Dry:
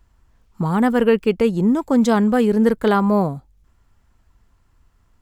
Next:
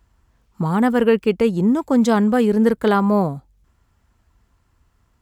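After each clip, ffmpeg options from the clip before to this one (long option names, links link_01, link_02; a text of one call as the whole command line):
ffmpeg -i in.wav -af "highpass=40" out.wav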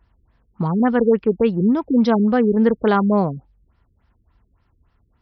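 ffmpeg -i in.wav -af "afftfilt=real='re*lt(b*sr/1024,450*pow(5900/450,0.5+0.5*sin(2*PI*3.5*pts/sr)))':imag='im*lt(b*sr/1024,450*pow(5900/450,0.5+0.5*sin(2*PI*3.5*pts/sr)))':win_size=1024:overlap=0.75" out.wav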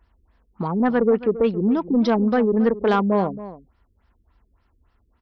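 ffmpeg -i in.wav -filter_complex "[0:a]equalizer=frequency=130:width=2.4:gain=-14.5,asoftclip=type=tanh:threshold=-9.5dB,asplit=2[link_01][link_02];[link_02]adelay=274.1,volume=-15dB,highshelf=frequency=4000:gain=-6.17[link_03];[link_01][link_03]amix=inputs=2:normalize=0" out.wav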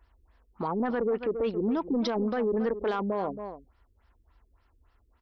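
ffmpeg -i in.wav -af "equalizer=frequency=170:width_type=o:width=1.1:gain=-10.5,alimiter=limit=-20dB:level=0:latency=1:release=21,volume=-1dB" out.wav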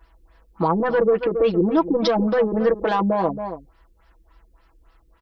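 ffmpeg -i in.wav -af "aecho=1:1:6.1:0.95,volume=7dB" out.wav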